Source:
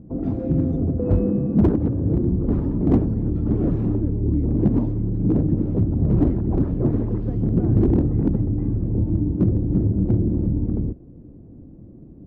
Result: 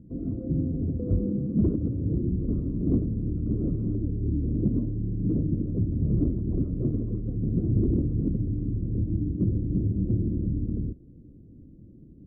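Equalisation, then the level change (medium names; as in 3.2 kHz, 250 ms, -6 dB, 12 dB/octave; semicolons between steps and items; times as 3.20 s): boxcar filter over 52 samples; -5.5 dB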